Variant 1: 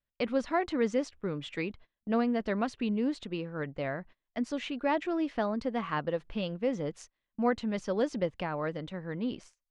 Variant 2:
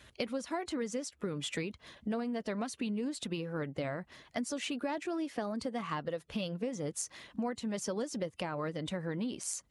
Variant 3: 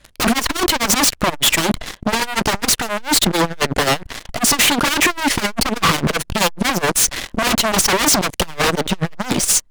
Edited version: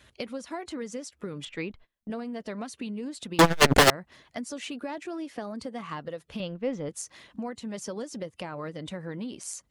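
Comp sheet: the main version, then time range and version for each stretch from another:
2
0:01.45–0:02.10: punch in from 1
0:03.39–0:03.90: punch in from 3
0:06.40–0:06.89: punch in from 1

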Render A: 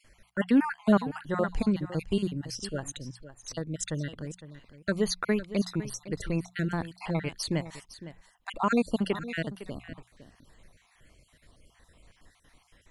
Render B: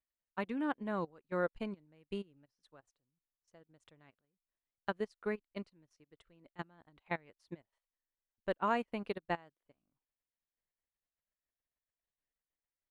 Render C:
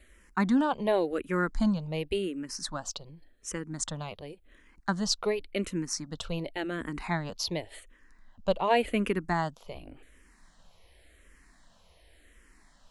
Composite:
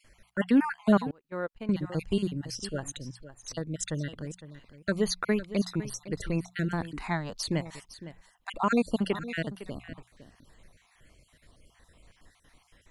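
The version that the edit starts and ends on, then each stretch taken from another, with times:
A
0:01.11–0:01.69: punch in from B
0:06.93–0:07.41: punch in from C

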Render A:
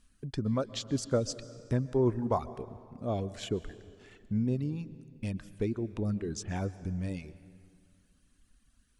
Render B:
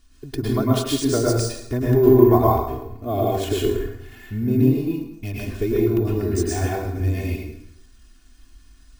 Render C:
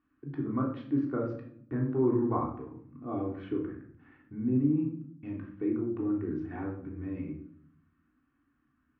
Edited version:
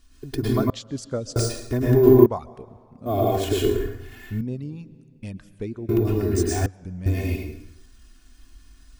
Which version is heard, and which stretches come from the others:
B
0:00.70–0:01.36: punch in from A
0:02.26–0:03.06: punch in from A
0:04.41–0:05.89: punch in from A
0:06.66–0:07.06: punch in from A
not used: C

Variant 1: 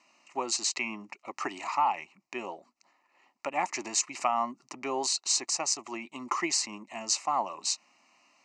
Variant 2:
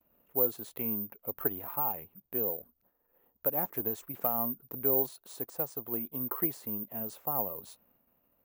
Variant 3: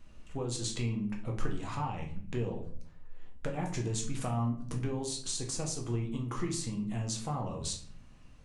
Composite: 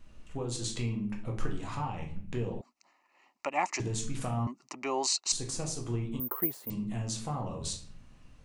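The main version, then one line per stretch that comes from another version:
3
0:02.61–0:03.80: punch in from 1
0:04.47–0:05.32: punch in from 1
0:06.20–0:06.70: punch in from 2

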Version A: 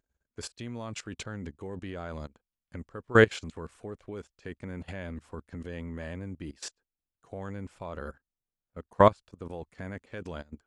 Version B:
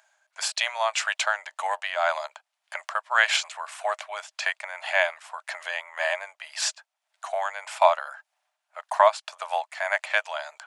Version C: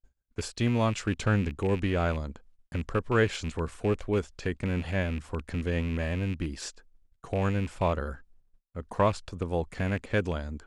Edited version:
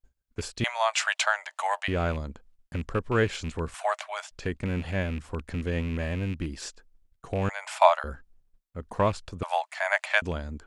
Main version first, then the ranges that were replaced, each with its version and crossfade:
C
0:00.64–0:01.88: punch in from B
0:03.74–0:04.31: punch in from B
0:07.49–0:08.04: punch in from B
0:09.43–0:10.22: punch in from B
not used: A

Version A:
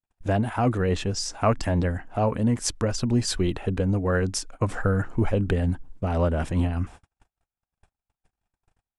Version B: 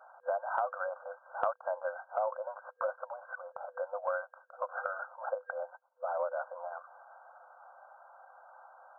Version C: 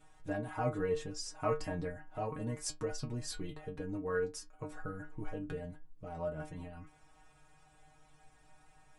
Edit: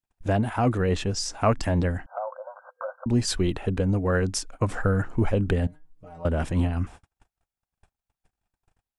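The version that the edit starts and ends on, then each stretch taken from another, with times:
A
0:02.06–0:03.06: punch in from B
0:05.67–0:06.25: punch in from C

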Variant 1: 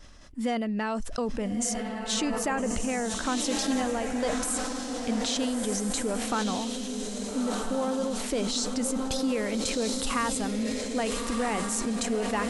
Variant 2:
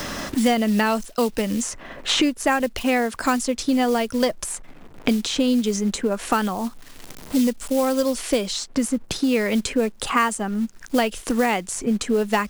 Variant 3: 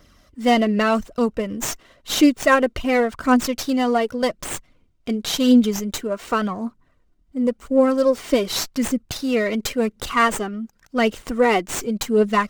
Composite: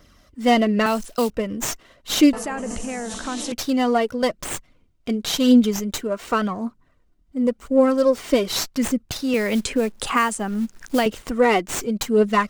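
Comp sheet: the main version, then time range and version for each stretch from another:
3
0:00.86–0:01.30: punch in from 2
0:02.33–0:03.52: punch in from 1
0:09.34–0:11.06: punch in from 2

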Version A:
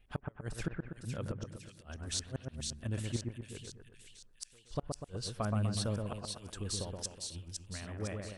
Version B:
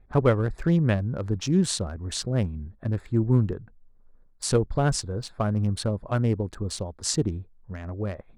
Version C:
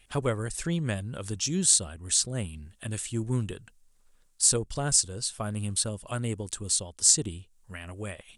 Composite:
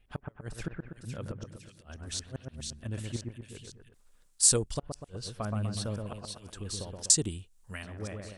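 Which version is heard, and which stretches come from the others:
A
0:03.94–0:04.79: punch in from C
0:07.10–0:07.83: punch in from C
not used: B

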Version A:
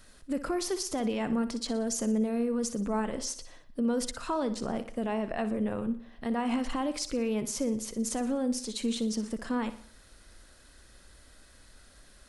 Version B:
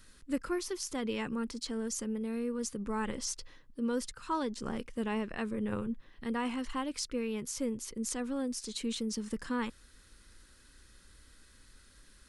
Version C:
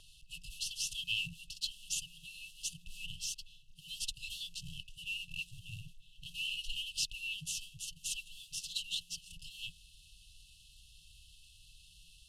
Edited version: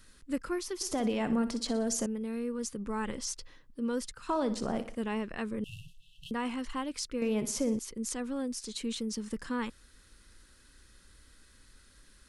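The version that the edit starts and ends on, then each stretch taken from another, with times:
B
0:00.81–0:02.06: punch in from A
0:04.29–0:04.95: punch in from A
0:05.64–0:06.31: punch in from C
0:07.22–0:07.79: punch in from A

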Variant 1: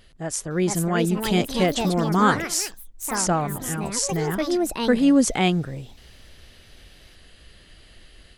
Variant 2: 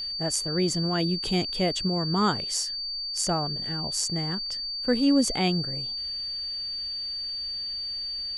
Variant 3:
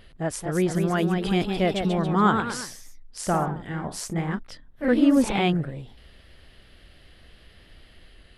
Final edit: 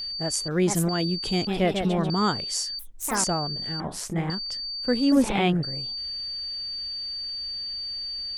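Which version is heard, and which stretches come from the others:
2
0:00.48–0:00.89: punch in from 1
0:01.47–0:02.10: punch in from 3
0:02.79–0:03.24: punch in from 1
0:03.80–0:04.30: punch in from 3
0:05.12–0:05.63: punch in from 3

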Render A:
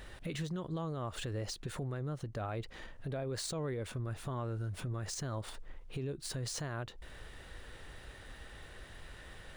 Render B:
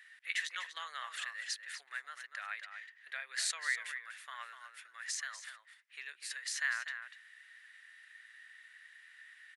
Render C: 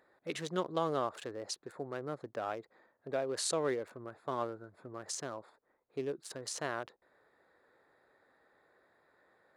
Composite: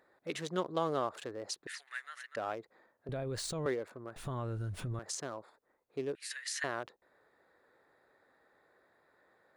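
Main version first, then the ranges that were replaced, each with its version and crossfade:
C
0:01.67–0:02.36: punch in from B
0:03.09–0:03.66: punch in from A
0:04.16–0:04.99: punch in from A
0:06.15–0:06.64: punch in from B

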